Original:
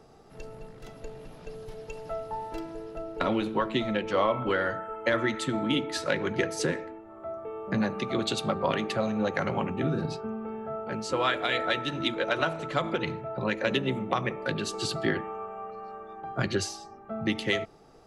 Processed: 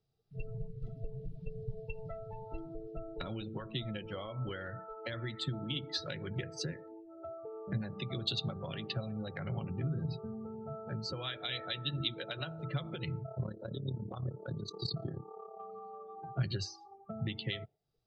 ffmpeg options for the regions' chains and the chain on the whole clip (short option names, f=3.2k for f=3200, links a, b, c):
-filter_complex "[0:a]asettb=1/sr,asplit=3[a][b][c];[a]atrim=end=2.064[d];[b]atrim=start=2.06:end=2.51,asetpts=PTS-STARTPTS,afade=t=in:d=0.004:c=qsin,afade=t=out:st=0.446:d=0.004:c=qsin,asoftclip=type=hard:threshold=-31dB,equalizer=f=960:w=2.4:g=-7[e];[c]atrim=start=2.506[f];[d][e]acrossfade=d=0.004:c1=hsin:c2=qsin[g];[g][f]acrossfade=d=0.004:c1=qsin:c2=hsin,asettb=1/sr,asplit=3[h][i][j];[h]atrim=end=13.234[k];[i]atrim=start=13.23:end=15.6,asetpts=PTS-STARTPTS,afade=t=in:d=0.004:c=qsin,afade=t=out:st=2.366:d=0.004:c=qsin,asuperstop=centerf=2300:order=4:qfactor=0.95,highshelf=f=8.5k:g=-5,tremolo=f=35:d=0.824[l];[j]atrim=start=15.596[m];[k][l]acrossfade=d=0.004:c1=hsin:c2=qsin[n];[n][m]acrossfade=d=0.004:c1=qsin:c2=hsin,afftdn=nr=33:nf=-36,acompressor=threshold=-43dB:ratio=4,equalizer=f=125:t=o:w=1:g=9,equalizer=f=250:t=o:w=1:g=-9,equalizer=f=500:t=o:w=1:g=-5,equalizer=f=1k:t=o:w=1:g=-11,equalizer=f=2k:t=o:w=1:g=-5,equalizer=f=4k:t=o:w=1:g=9,equalizer=f=8k:t=o:w=1:g=-11,volume=8dB"